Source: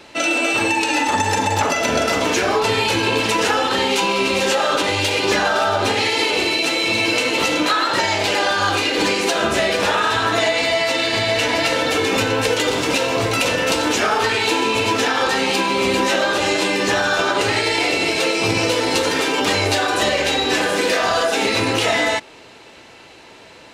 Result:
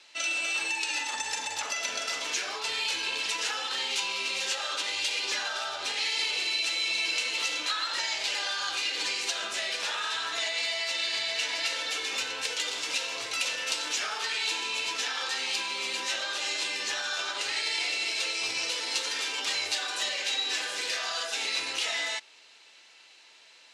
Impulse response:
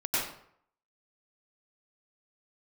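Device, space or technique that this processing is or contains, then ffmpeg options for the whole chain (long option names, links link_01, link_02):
piezo pickup straight into a mixer: -af "lowpass=5600,aderivative,volume=-1dB"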